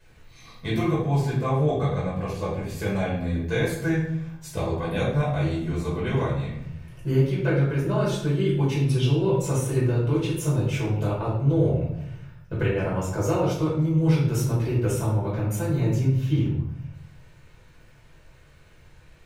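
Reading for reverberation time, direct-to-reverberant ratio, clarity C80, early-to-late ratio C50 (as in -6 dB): 0.75 s, -8.5 dB, 6.0 dB, 2.0 dB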